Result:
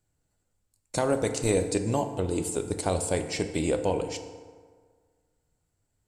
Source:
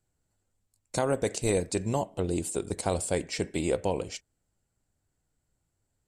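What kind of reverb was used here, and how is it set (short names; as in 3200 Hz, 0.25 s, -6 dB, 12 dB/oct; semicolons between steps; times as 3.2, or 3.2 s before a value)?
FDN reverb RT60 1.7 s, low-frequency decay 0.9×, high-frequency decay 0.55×, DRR 7.5 dB; gain +1 dB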